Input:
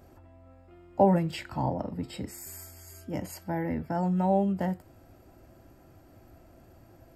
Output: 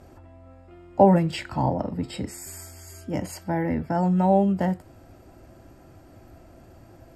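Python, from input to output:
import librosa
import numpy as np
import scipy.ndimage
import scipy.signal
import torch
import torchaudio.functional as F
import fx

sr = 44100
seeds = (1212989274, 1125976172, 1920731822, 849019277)

y = scipy.signal.sosfilt(scipy.signal.butter(4, 11000.0, 'lowpass', fs=sr, output='sos'), x)
y = y * 10.0 ** (5.5 / 20.0)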